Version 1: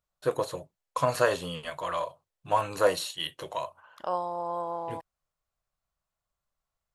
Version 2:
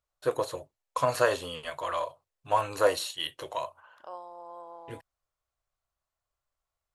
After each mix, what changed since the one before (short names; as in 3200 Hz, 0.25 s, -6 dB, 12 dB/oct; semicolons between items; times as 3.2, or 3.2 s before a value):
second voice -12.0 dB; master: add bell 180 Hz -13.5 dB 0.45 oct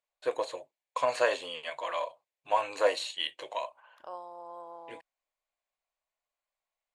first voice: add speaker cabinet 390–7800 Hz, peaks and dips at 400 Hz -4 dB, 1300 Hz -9 dB, 2300 Hz +6 dB, 5600 Hz -8 dB